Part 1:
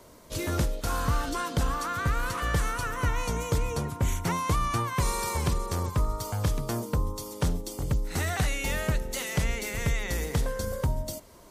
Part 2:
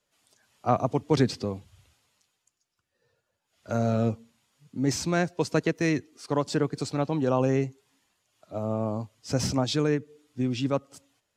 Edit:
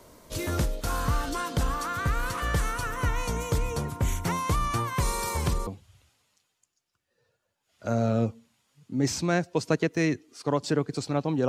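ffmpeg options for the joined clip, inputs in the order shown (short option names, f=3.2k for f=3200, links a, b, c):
-filter_complex "[0:a]apad=whole_dur=11.48,atrim=end=11.48,atrim=end=5.672[a];[1:a]atrim=start=1.508:end=7.32[b];[a][b]acrossfade=d=0.004:c1=hsin:c2=hsin"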